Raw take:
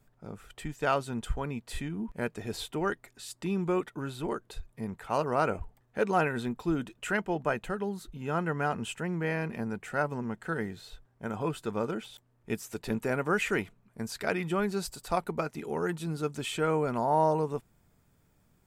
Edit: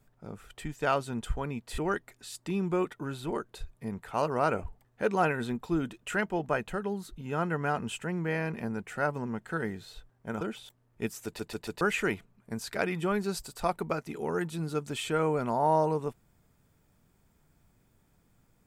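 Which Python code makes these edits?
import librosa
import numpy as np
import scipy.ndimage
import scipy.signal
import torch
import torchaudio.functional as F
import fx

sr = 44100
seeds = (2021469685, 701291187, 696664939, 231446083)

y = fx.edit(x, sr, fx.cut(start_s=1.78, length_s=0.96),
    fx.cut(start_s=11.37, length_s=0.52),
    fx.stutter_over(start_s=12.73, slice_s=0.14, count=4), tone=tone)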